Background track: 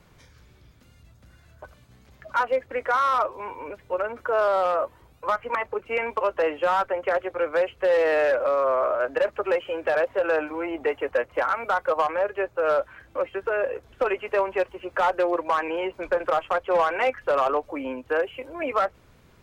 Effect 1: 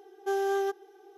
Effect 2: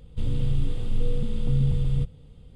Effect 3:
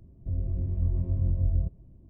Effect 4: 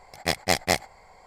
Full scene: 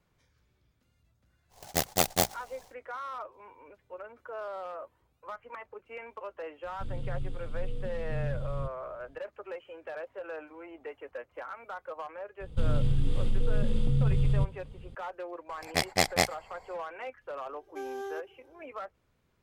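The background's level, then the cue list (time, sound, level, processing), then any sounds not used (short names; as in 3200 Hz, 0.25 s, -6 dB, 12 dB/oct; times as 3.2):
background track -17 dB
1.49 add 4 -3 dB, fades 0.10 s + noise-modulated delay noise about 5400 Hz, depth 0.12 ms
6.63 add 2 -11 dB
12.4 add 2 -16.5 dB + maximiser +18 dB
15.49 add 4 -2.5 dB
17.49 add 1 -10 dB
not used: 3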